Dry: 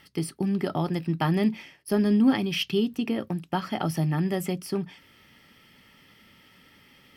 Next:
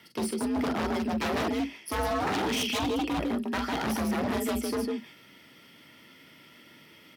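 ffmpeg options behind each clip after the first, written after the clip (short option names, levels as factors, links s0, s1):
-af "aecho=1:1:43.73|151.6:0.501|0.631,aeval=exprs='0.0668*(abs(mod(val(0)/0.0668+3,4)-2)-1)':c=same,afreqshift=58"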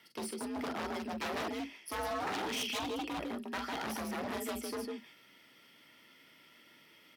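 -af "lowshelf=f=270:g=-9.5,volume=0.501"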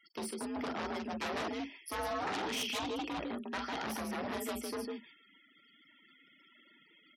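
-af "afftfilt=real='re*gte(hypot(re,im),0.00178)':imag='im*gte(hypot(re,im),0.00178)':win_size=1024:overlap=0.75"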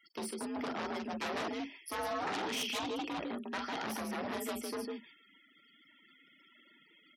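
-af "highpass=99"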